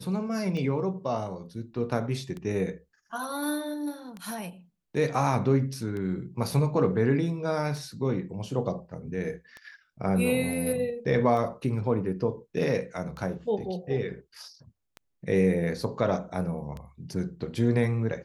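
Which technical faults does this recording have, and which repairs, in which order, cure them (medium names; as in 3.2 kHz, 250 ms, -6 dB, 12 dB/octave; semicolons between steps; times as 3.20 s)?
tick 33 1/3 rpm -25 dBFS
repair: de-click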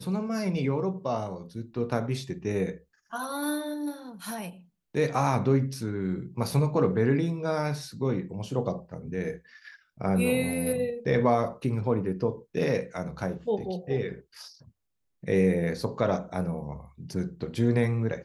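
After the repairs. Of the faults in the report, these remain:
nothing left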